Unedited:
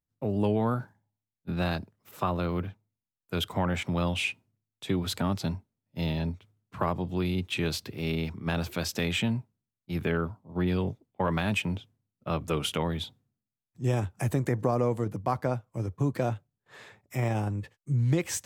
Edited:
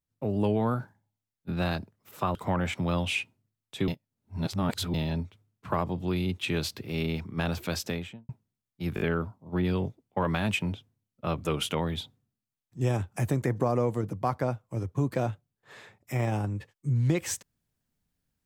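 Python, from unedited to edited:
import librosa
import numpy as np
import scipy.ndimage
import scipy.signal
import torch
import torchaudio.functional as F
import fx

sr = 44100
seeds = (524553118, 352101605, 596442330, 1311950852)

y = fx.studio_fade_out(x, sr, start_s=8.84, length_s=0.54)
y = fx.edit(y, sr, fx.cut(start_s=2.35, length_s=1.09),
    fx.reverse_span(start_s=4.97, length_s=1.06),
    fx.stutter(start_s=10.04, slice_s=0.02, count=4), tone=tone)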